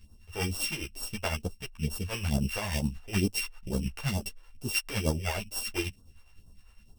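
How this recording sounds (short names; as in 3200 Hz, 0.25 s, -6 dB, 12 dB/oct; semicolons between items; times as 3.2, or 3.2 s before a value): a buzz of ramps at a fixed pitch in blocks of 16 samples; phasing stages 2, 2.2 Hz, lowest notch 170–2100 Hz; tremolo triangle 9.9 Hz, depth 65%; a shimmering, thickened sound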